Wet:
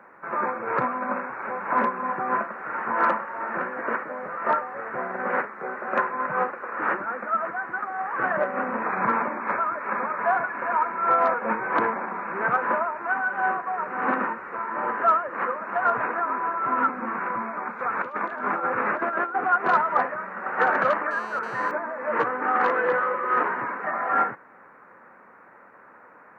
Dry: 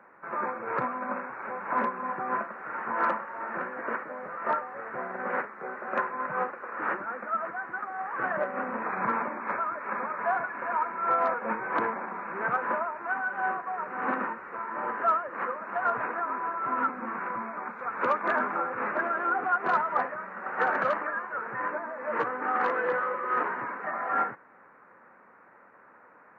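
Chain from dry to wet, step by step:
0:17.80–0:19.36: compressor whose output falls as the input rises −31 dBFS, ratio −0.5
0:21.11–0:21.71: phone interference −47 dBFS
level +5 dB

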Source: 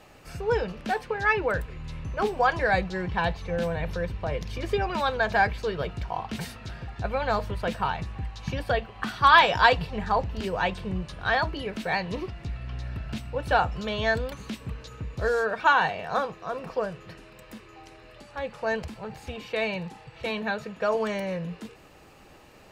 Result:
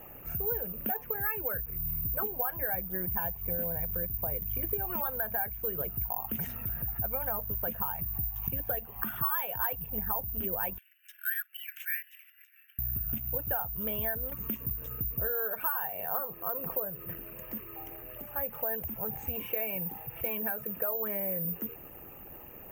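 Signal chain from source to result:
spectral envelope exaggerated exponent 1.5
0:10.78–0:12.79: Butterworth high-pass 1,500 Hz 96 dB per octave
downward compressor 6 to 1, threshold −35 dBFS, peak gain reduction 21.5 dB
Butterworth band-reject 4,300 Hz, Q 1.5
bad sample-rate conversion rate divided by 3×, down none, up zero stuff

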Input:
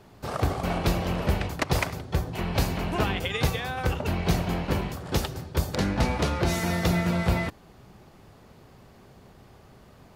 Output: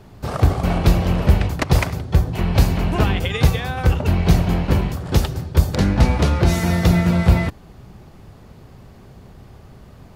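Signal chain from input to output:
low-shelf EQ 180 Hz +9.5 dB
level +4 dB

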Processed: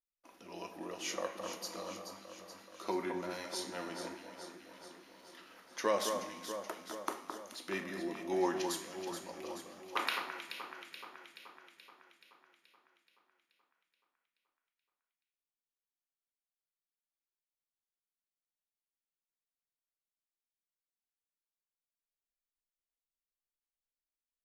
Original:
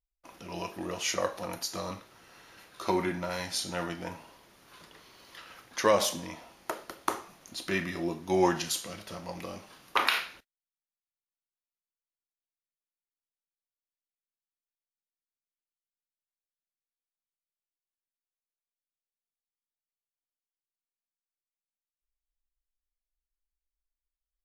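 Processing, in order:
low shelf with overshoot 180 Hz −10.5 dB, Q 1.5
tuned comb filter 98 Hz, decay 1.9 s, mix 60%
delay that swaps between a low-pass and a high-pass 214 ms, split 1,900 Hz, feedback 77%, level −6 dB
level −1.5 dB

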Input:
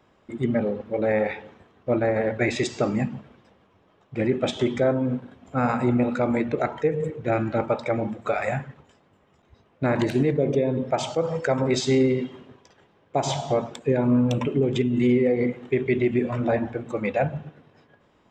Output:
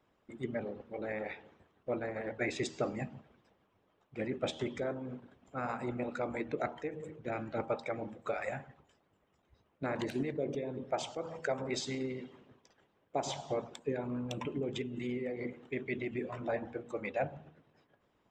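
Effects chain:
harmonic and percussive parts rebalanced harmonic −10 dB
hum removal 79.57 Hz, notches 13
level −8.5 dB

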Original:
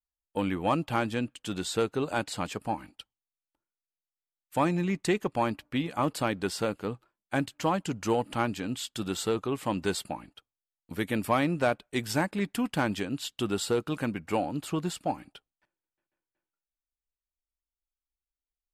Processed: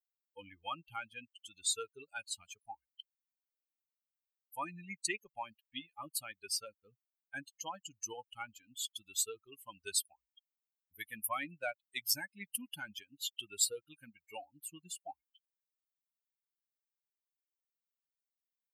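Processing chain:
spectral dynamics exaggerated over time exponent 3
first-order pre-emphasis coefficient 0.97
level +10.5 dB

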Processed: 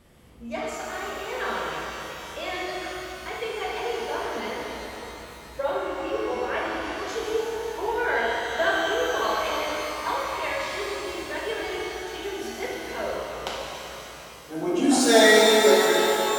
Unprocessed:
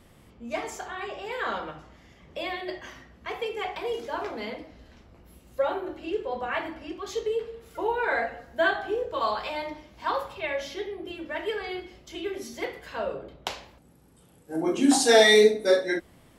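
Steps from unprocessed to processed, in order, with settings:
reverb with rising layers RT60 3.5 s, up +12 semitones, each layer −8 dB, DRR −3 dB
level −2 dB

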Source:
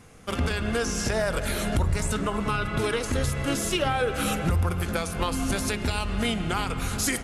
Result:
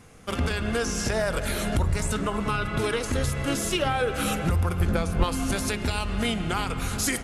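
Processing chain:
0:04.80–0:05.24: spectral tilt −2 dB per octave

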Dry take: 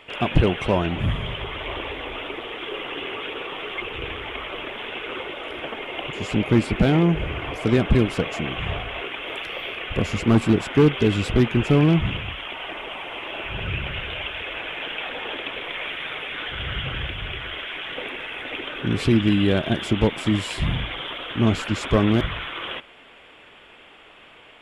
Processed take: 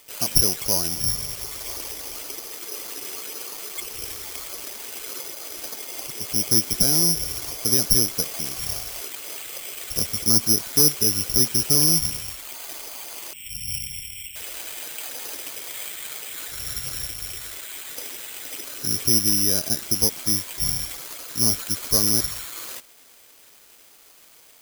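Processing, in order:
0:13.33–0:14.36: Chebyshev band-stop filter 210–2,200 Hz, order 4
bad sample-rate conversion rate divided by 8×, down filtered, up zero stuff
level −10.5 dB

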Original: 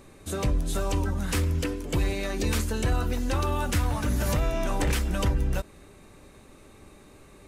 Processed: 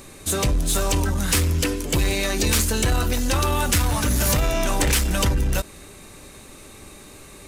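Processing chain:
high-shelf EQ 2,700 Hz +10.5 dB
in parallel at 0 dB: hard clipping −25.5 dBFS, distortion −9 dB

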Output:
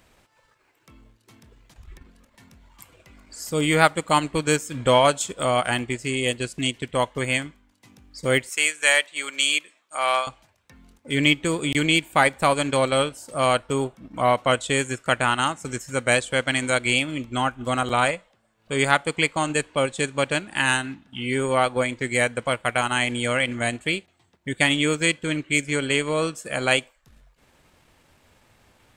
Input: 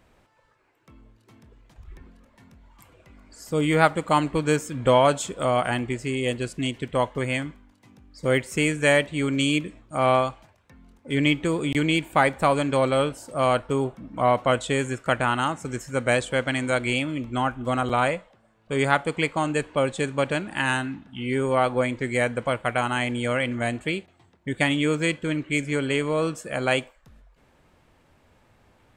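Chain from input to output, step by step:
0:08.49–0:10.27: high-pass filter 800 Hz 12 dB per octave
transient designer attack −1 dB, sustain −7 dB
high-shelf EQ 2,300 Hz +10 dB

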